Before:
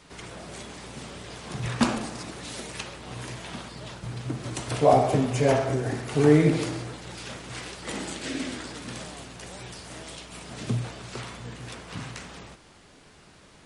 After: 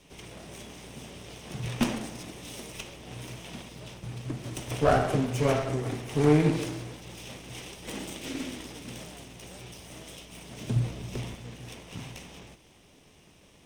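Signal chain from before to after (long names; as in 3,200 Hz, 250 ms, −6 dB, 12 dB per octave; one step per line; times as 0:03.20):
lower of the sound and its delayed copy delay 0.35 ms
0:10.76–0:11.35: low-shelf EQ 380 Hz +9 dB
level −3 dB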